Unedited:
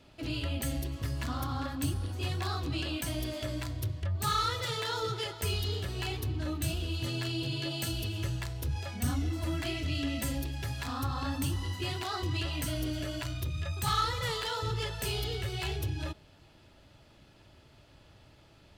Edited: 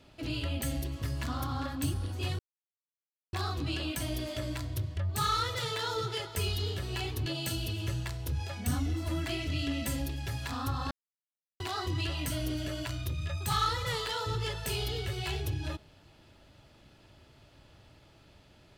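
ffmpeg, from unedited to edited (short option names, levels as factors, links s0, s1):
-filter_complex "[0:a]asplit=5[s0][s1][s2][s3][s4];[s0]atrim=end=2.39,asetpts=PTS-STARTPTS,afade=t=out:st=2.386:d=0.004:c=hsin,apad=pad_dur=0.94[s5];[s1]atrim=start=2.39:end=6.322,asetpts=PTS-STARTPTS,afade=t=in:d=0.004:c=hsin[s6];[s2]atrim=start=7.618:end=11.27,asetpts=PTS-STARTPTS,afade=t=out:st=3.648:d=0.004:c=hsin[s7];[s3]atrim=start=11.27:end=11.96,asetpts=PTS-STARTPTS,volume=0[s8];[s4]atrim=start=11.96,asetpts=PTS-STARTPTS,afade=t=in:d=0.004:c=hsin[s9];[s5][s6]concat=n=2:v=0:a=1[s10];[s7][s8][s9]concat=n=3:v=0:a=1[s11];[s10][s11]acrossfade=d=0.004:c1=hsin:c2=hsin"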